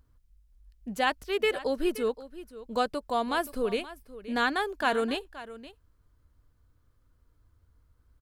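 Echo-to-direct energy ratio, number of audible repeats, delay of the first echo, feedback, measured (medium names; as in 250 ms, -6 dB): -16.0 dB, 1, 524 ms, no regular repeats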